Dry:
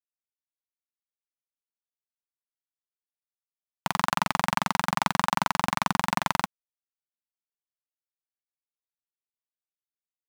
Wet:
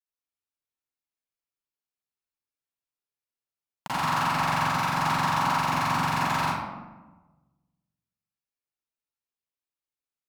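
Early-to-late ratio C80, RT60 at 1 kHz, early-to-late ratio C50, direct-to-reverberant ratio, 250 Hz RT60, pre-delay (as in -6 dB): 0.0 dB, 1.1 s, -5.0 dB, -12.0 dB, 1.5 s, 35 ms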